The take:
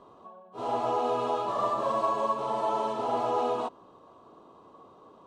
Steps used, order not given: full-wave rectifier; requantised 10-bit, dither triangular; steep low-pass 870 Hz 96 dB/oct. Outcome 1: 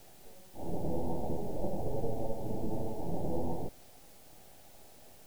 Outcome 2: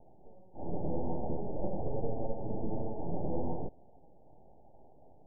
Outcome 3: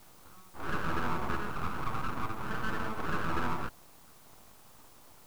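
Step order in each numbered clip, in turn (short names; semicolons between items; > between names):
full-wave rectifier > steep low-pass > requantised; requantised > full-wave rectifier > steep low-pass; steep low-pass > requantised > full-wave rectifier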